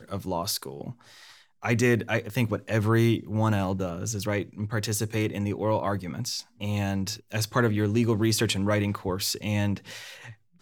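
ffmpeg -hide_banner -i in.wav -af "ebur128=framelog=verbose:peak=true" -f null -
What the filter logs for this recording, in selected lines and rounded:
Integrated loudness:
  I:         -27.1 LUFS
  Threshold: -37.6 LUFS
Loudness range:
  LRA:         3.0 LU
  Threshold: -47.2 LUFS
  LRA low:   -29.2 LUFS
  LRA high:  -26.1 LUFS
True peak:
  Peak:      -10.0 dBFS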